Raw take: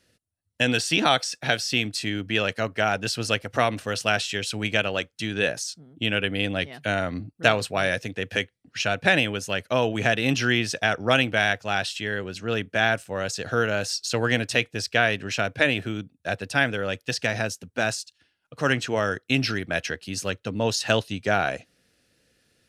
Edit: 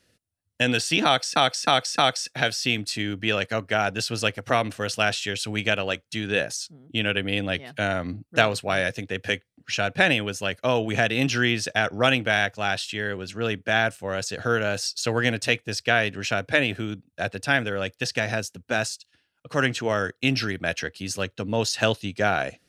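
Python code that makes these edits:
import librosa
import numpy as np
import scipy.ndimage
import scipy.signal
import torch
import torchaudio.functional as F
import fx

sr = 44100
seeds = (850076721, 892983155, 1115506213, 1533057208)

y = fx.edit(x, sr, fx.repeat(start_s=1.05, length_s=0.31, count=4), tone=tone)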